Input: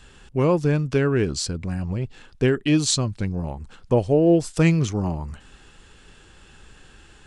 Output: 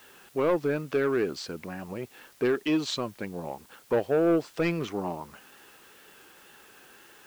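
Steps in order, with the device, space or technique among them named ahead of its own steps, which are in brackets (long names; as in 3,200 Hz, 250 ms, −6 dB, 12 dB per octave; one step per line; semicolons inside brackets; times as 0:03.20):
tape answering machine (band-pass filter 340–2,800 Hz; soft clipping −17.5 dBFS, distortion −13 dB; tape wow and flutter; white noise bed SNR 28 dB)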